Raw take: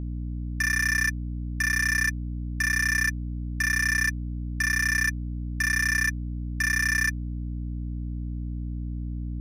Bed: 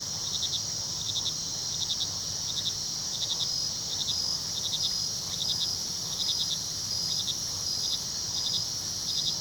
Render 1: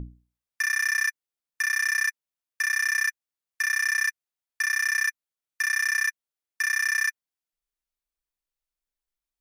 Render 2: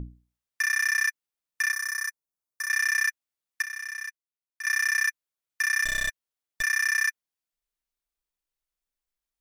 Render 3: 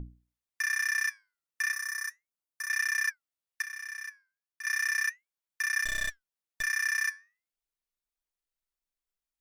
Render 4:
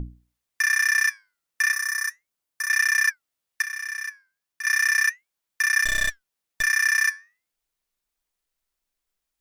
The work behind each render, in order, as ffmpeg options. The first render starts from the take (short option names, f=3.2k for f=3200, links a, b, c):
-af "bandreject=f=60:t=h:w=6,bandreject=f=120:t=h:w=6,bandreject=f=180:t=h:w=6,bandreject=f=240:t=h:w=6,bandreject=f=300:t=h:w=6,bandreject=f=360:t=h:w=6"
-filter_complex "[0:a]asettb=1/sr,asplit=3[a][b][c];[a]atrim=end=1.724[d];[b]atrim=start=1.72:end=2.69,asetpts=PTS-STARTPTS,afade=t=in:d=0.004:c=qsin,afade=t=out:st=0.966:d=0.004:c=qsin,equalizer=f=2.7k:w=1.1:g=-12.5[e];[c]atrim=start=2.686[f];[d][e]acrossfade=d=0.004:c1=hsin:c2=qsin[g];[g][f]acrossfade=d=0.004:c1=qsin:c2=hsin,asplit=3[h][i][j];[h]afade=t=out:st=5.84:d=0.02[k];[i]aeval=exprs='clip(val(0),-1,0.0237)':c=same,afade=t=in:st=5.84:d=0.02,afade=t=out:st=6.61:d=0.02[l];[j]afade=t=in:st=6.61:d=0.02[m];[k][l][m]amix=inputs=3:normalize=0,asplit=3[n][o][p];[n]atrim=end=3.622[q];[o]atrim=start=3.618:end=4.652,asetpts=PTS-STARTPTS,volume=-11dB[r];[p]atrim=start=4.648[s];[q][r]acrossfade=d=0.004:c1=hsin:c2=hsin[t];[t][s]acrossfade=d=0.004:c1=hsin:c2=hsin"
-af "flanger=delay=1.3:depth=9.7:regen=82:speed=0.35:shape=triangular"
-af "volume=8.5dB"